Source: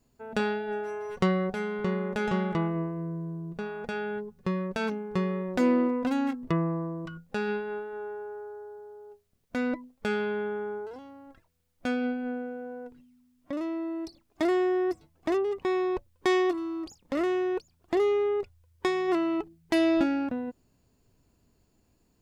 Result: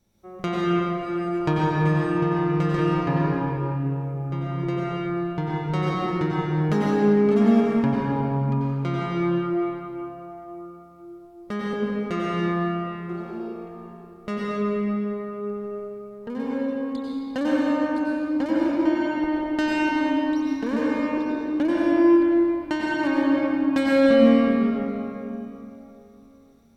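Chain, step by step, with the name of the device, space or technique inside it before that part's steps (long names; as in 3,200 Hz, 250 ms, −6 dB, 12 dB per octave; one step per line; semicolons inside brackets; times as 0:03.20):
slowed and reverbed (speed change −17%; convolution reverb RT60 3.3 s, pre-delay 87 ms, DRR −5.5 dB)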